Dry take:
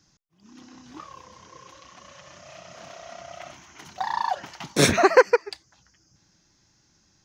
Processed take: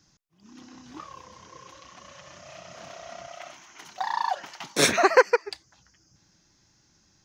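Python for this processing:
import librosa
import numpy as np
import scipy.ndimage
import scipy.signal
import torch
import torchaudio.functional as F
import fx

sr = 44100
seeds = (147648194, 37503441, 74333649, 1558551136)

y = fx.highpass(x, sr, hz=470.0, slope=6, at=(3.27, 5.45))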